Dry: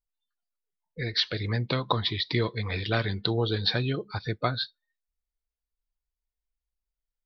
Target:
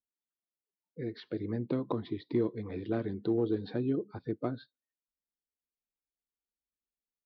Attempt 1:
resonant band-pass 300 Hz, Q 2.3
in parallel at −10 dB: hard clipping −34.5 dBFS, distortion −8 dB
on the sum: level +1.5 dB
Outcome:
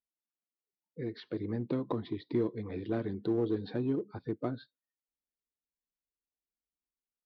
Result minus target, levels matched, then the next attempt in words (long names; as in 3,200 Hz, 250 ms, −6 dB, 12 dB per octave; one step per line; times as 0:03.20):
hard clipping: distortion +13 dB
resonant band-pass 300 Hz, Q 2.3
in parallel at −10 dB: hard clipping −26.5 dBFS, distortion −21 dB
on the sum: level +1.5 dB